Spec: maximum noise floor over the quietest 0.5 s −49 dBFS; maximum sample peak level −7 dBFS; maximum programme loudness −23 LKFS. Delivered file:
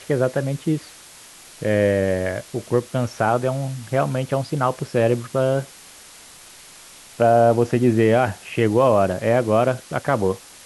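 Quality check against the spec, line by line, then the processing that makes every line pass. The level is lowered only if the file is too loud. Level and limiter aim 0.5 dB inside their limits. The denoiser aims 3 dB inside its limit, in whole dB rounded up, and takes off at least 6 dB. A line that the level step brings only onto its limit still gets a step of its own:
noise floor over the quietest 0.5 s −44 dBFS: out of spec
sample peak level −5.5 dBFS: out of spec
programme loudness −20.5 LKFS: out of spec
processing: broadband denoise 6 dB, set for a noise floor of −44 dBFS
level −3 dB

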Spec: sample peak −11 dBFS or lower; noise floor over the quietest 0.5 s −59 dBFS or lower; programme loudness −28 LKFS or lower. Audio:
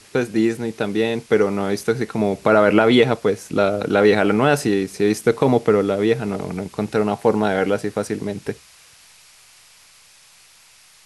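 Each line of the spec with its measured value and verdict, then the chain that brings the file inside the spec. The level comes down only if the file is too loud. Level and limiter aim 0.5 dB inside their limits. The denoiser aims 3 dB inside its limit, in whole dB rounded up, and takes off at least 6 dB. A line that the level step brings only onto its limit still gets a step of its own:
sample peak −2.5 dBFS: out of spec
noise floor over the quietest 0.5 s −51 dBFS: out of spec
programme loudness −19.0 LKFS: out of spec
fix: level −9.5 dB

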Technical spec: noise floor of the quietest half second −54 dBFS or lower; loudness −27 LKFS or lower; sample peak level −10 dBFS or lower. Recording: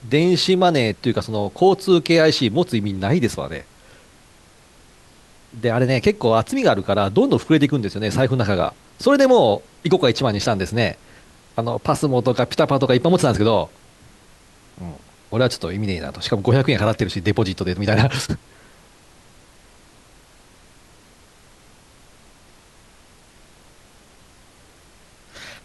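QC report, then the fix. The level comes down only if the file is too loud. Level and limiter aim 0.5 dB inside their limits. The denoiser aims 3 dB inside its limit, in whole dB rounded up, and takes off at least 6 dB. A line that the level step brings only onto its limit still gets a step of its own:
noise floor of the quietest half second −50 dBFS: out of spec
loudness −19.0 LKFS: out of spec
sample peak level −4.5 dBFS: out of spec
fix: level −8.5 dB

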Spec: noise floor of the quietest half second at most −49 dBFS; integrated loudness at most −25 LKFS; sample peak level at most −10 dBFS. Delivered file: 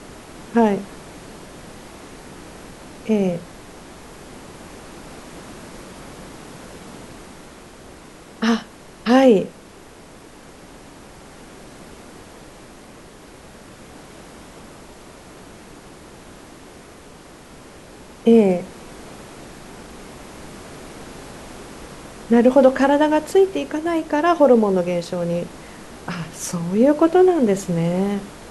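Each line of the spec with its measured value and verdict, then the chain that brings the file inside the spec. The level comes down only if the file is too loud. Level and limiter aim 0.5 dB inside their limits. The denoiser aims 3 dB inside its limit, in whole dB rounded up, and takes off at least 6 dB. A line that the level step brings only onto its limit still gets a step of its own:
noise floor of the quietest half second −43 dBFS: out of spec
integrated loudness −18.0 LKFS: out of spec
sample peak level −2.5 dBFS: out of spec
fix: level −7.5 dB
brickwall limiter −10.5 dBFS

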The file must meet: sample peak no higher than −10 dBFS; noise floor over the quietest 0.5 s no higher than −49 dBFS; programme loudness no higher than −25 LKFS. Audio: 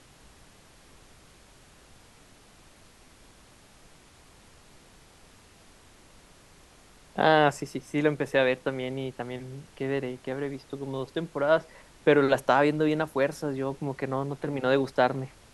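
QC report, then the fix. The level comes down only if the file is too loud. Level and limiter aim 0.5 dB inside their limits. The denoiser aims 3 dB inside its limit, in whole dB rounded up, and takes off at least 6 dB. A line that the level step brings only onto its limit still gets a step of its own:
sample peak −7.5 dBFS: out of spec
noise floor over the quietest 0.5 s −55 dBFS: in spec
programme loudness −27.0 LKFS: in spec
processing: brickwall limiter −10.5 dBFS

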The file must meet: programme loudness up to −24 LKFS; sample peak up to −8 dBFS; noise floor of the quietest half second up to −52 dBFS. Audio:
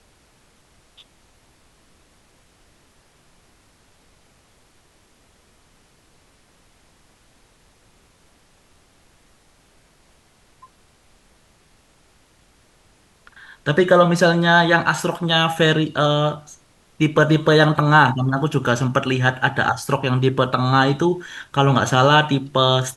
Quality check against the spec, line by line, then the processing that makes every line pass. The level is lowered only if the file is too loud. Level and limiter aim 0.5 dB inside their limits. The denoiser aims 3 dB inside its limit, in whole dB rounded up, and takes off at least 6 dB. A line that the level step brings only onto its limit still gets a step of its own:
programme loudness −17.5 LKFS: out of spec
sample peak −3.0 dBFS: out of spec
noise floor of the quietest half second −56 dBFS: in spec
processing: level −7 dB

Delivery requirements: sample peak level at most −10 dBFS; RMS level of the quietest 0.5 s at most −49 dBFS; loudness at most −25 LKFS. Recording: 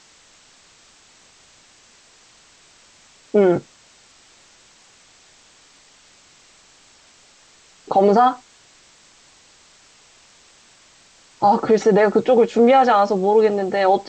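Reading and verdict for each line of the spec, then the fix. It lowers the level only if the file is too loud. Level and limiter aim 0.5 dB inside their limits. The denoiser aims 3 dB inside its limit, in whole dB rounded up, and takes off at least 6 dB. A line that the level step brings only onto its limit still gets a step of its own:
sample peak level −5.5 dBFS: out of spec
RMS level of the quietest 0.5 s −52 dBFS: in spec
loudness −16.5 LKFS: out of spec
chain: level −9 dB

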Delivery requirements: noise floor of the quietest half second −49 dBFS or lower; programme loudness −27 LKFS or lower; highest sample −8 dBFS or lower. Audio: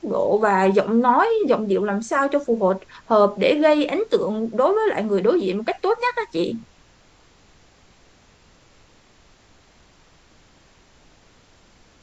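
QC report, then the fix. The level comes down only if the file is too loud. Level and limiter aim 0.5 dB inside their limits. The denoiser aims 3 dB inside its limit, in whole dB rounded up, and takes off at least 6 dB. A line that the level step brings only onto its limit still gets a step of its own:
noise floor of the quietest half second −54 dBFS: in spec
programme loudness −20.0 LKFS: out of spec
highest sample −5.0 dBFS: out of spec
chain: level −7.5 dB

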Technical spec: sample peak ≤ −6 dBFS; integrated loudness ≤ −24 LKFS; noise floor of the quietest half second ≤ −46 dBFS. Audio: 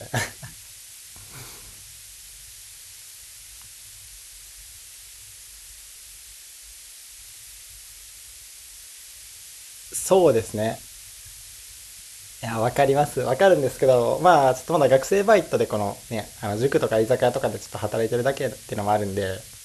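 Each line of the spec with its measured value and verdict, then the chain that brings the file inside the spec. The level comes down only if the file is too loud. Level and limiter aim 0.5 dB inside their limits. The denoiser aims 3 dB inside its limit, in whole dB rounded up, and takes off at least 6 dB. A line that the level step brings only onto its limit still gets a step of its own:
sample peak −3.0 dBFS: out of spec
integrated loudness −22.0 LKFS: out of spec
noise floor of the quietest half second −44 dBFS: out of spec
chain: level −2.5 dB
brickwall limiter −6.5 dBFS

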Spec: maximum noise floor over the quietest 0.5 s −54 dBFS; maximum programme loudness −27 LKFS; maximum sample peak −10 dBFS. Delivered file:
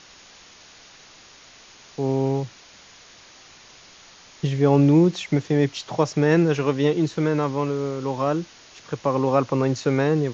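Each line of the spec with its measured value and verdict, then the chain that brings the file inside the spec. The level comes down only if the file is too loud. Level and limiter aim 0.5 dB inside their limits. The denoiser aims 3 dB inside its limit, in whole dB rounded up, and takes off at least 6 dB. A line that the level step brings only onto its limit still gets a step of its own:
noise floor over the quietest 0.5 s −49 dBFS: out of spec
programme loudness −22.0 LKFS: out of spec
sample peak −6.5 dBFS: out of spec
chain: level −5.5 dB

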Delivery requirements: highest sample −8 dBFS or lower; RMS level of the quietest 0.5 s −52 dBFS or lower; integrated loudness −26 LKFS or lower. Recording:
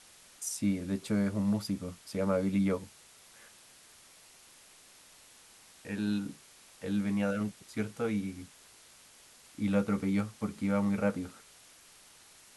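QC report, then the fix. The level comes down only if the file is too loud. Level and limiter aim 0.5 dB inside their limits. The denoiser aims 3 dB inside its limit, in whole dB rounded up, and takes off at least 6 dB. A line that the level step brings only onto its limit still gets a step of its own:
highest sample −16.0 dBFS: in spec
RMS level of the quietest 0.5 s −58 dBFS: in spec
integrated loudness −33.0 LKFS: in spec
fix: no processing needed

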